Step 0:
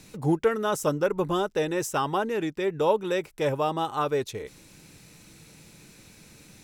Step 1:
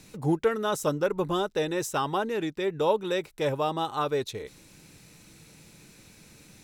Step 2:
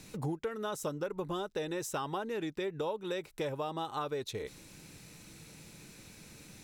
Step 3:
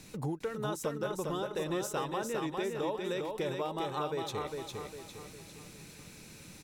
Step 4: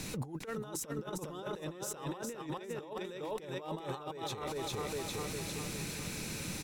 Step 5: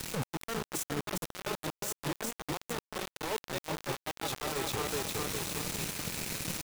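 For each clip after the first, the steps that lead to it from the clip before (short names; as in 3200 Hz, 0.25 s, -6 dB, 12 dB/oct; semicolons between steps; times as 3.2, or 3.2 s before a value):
dynamic EQ 3900 Hz, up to +7 dB, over -58 dBFS, Q 5.3; gain -1.5 dB
compressor 6:1, threshold -33 dBFS, peak gain reduction 14 dB
feedback echo 0.404 s, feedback 43%, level -4 dB
negative-ratio compressor -41 dBFS, ratio -0.5; limiter -34 dBFS, peak gain reduction 9 dB; gain +5 dB
requantised 6-bit, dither none; gain +2.5 dB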